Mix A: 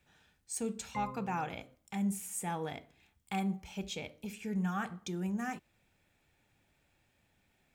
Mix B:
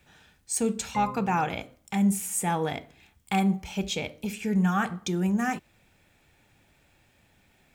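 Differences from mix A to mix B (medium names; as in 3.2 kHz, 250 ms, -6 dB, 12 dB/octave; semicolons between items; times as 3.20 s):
speech +10.0 dB; background +6.0 dB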